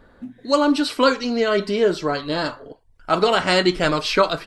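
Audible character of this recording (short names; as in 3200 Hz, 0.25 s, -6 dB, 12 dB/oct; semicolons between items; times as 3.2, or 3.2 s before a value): noise floor -54 dBFS; spectral tilt -2.5 dB/oct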